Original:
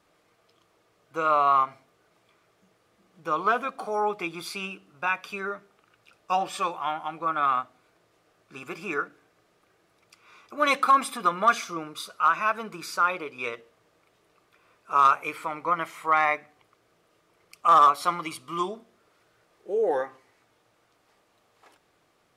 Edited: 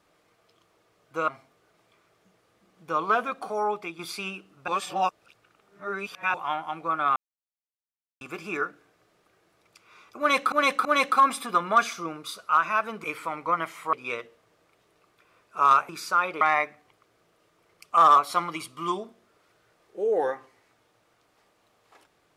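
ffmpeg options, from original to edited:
-filter_complex "[0:a]asplit=13[s0][s1][s2][s3][s4][s5][s6][s7][s8][s9][s10][s11][s12];[s0]atrim=end=1.282[s13];[s1]atrim=start=1.648:end=4.36,asetpts=PTS-STARTPTS,afade=t=out:st=2.202:d=0.51:c=qsin:silence=0.398107[s14];[s2]atrim=start=4.36:end=5.052,asetpts=PTS-STARTPTS,afade=t=in:d=0.004:c=hsin:silence=0.398107[s15];[s3]atrim=start=5.048:end=6.712,asetpts=PTS-STARTPTS,areverse[s16];[s4]atrim=start=6.708:end=7.53,asetpts=PTS-STARTPTS,afade=t=out:st=0.818:d=0.004:c=hsin[s17];[s5]atrim=start=7.53:end=8.58,asetpts=PTS-STARTPTS,volume=0[s18];[s6]atrim=start=8.58:end=10.892,asetpts=PTS-STARTPTS,afade=t=in:d=0.004:c=hsin[s19];[s7]atrim=start=10.558:end=10.892[s20];[s8]atrim=start=10.558:end=12.752[s21];[s9]atrim=start=15.228:end=16.122[s22];[s10]atrim=start=13.268:end=15.232[s23];[s11]atrim=start=12.748:end=13.272[s24];[s12]atrim=start=16.118[s25];[s14][s15]concat=n=2:v=0:a=1[s26];[s13][s26]acrossfade=d=0.004:c1=hsin:c2=hsin[s27];[s27][s16]acrossfade=d=0.004:c1=hsin:c2=hsin[s28];[s17][s18][s19]concat=n=3:v=0:a=1[s29];[s28][s29]acrossfade=d=0.004:c1=hsin:c2=hsin[s30];[s30][s20]acrossfade=d=0.004:c1=hsin:c2=hsin[s31];[s31][s21]acrossfade=d=0.004:c1=hsin:c2=hsin[s32];[s32][s22]acrossfade=d=0.004:c1=hsin:c2=hsin[s33];[s33][s23]acrossfade=d=0.004:c1=hsin:c2=hsin[s34];[s34][s24]acrossfade=d=0.004:c1=hsin:c2=hsin[s35];[s35][s25]acrossfade=d=0.004:c1=hsin:c2=hsin"

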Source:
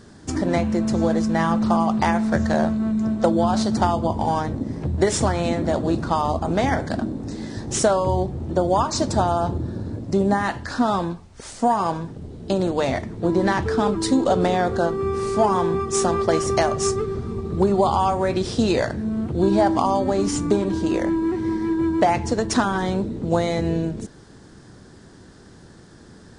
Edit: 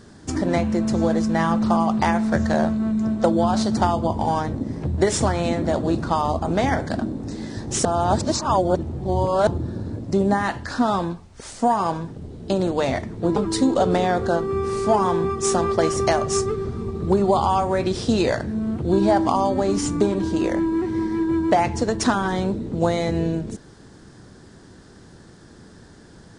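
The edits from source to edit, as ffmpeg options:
-filter_complex "[0:a]asplit=4[s0][s1][s2][s3];[s0]atrim=end=7.852[s4];[s1]atrim=start=7.848:end=9.472,asetpts=PTS-STARTPTS,areverse[s5];[s2]atrim=start=9.468:end=13.362[s6];[s3]atrim=start=13.858[s7];[s4][s5]acrossfade=d=0.004:c1=hsin:c2=hsin[s8];[s8][s6]acrossfade=d=0.004:c1=hsin:c2=hsin[s9];[s9][s7]acrossfade=d=0.004:c1=hsin:c2=hsin"

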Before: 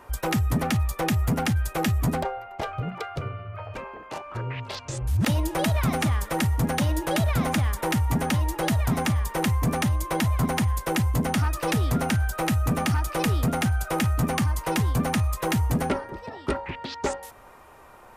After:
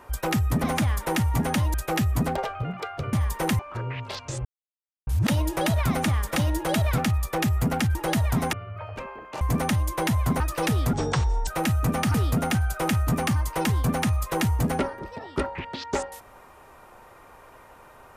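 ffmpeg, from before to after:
-filter_complex "[0:a]asplit=16[s0][s1][s2][s3][s4][s5][s6][s7][s8][s9][s10][s11][s12][s13][s14][s15];[s0]atrim=end=0.642[s16];[s1]atrim=start=7.398:end=8.502[s17];[s2]atrim=start=1.608:end=2.302[s18];[s3]atrim=start=2.608:end=3.312[s19];[s4]atrim=start=9.078:end=9.542[s20];[s5]atrim=start=4.188:end=5.05,asetpts=PTS-STARTPTS,afade=t=out:st=0.858:d=0.004:c=hsin,apad=pad_dur=0.62[s21];[s6]atrim=start=5.05:end=6.342,asetpts=PTS-STARTPTS,afade=t=in:d=0.004:c=hsin[s22];[s7]atrim=start=6.778:end=7.402[s23];[s8]atrim=start=0.638:end=1.612[s24];[s9]atrim=start=8.498:end=9.082[s25];[s10]atrim=start=3.308:end=4.192[s26];[s11]atrim=start=9.538:end=10.532[s27];[s12]atrim=start=11.448:end=11.984[s28];[s13]atrim=start=11.98:end=12.3,asetpts=PTS-STARTPTS,asetrate=26019,aresample=44100[s29];[s14]atrim=start=12.296:end=12.972[s30];[s15]atrim=start=13.248[s31];[s16][s17]acrossfade=d=0.004:c1=hsin:c2=hsin[s32];[s32][s18]acrossfade=d=0.004:c1=hsin:c2=hsin[s33];[s33][s19]acrossfade=d=0.004:c1=hsin:c2=hsin[s34];[s34][s20]acrossfade=d=0.004:c1=hsin:c2=hsin[s35];[s21][s22]concat=n=2:v=0:a=1[s36];[s35][s36]acrossfade=d=0.004:c1=hsin:c2=hsin[s37];[s37][s23]acrossfade=d=0.004:c1=hsin:c2=hsin[s38];[s38][s24]acrossfade=d=0.004:c1=hsin:c2=hsin[s39];[s39][s25]acrossfade=d=0.004:c1=hsin:c2=hsin[s40];[s40][s26]acrossfade=d=0.004:c1=hsin:c2=hsin[s41];[s41][s27]acrossfade=d=0.004:c1=hsin:c2=hsin[s42];[s42][s28]acrossfade=d=0.004:c1=hsin:c2=hsin[s43];[s43][s29]acrossfade=d=0.004:c1=hsin:c2=hsin[s44];[s44][s30]acrossfade=d=0.004:c1=hsin:c2=hsin[s45];[s45][s31]acrossfade=d=0.004:c1=hsin:c2=hsin"

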